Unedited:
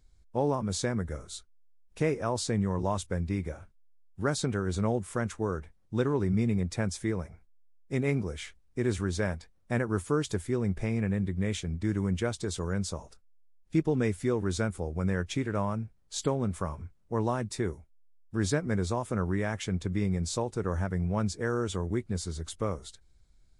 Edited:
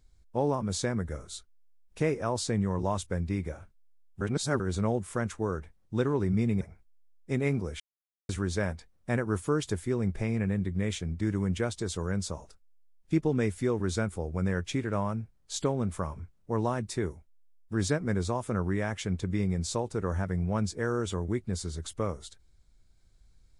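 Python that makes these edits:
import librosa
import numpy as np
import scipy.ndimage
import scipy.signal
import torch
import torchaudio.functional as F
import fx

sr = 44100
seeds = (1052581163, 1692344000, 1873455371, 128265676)

y = fx.edit(x, sr, fx.reverse_span(start_s=4.21, length_s=0.39),
    fx.cut(start_s=6.61, length_s=0.62),
    fx.silence(start_s=8.42, length_s=0.49), tone=tone)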